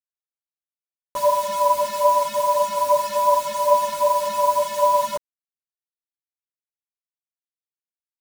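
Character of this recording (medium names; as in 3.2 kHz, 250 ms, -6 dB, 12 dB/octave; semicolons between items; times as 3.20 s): tremolo triangle 2.5 Hz, depth 85%; a quantiser's noise floor 6-bit, dither none; a shimmering, thickened sound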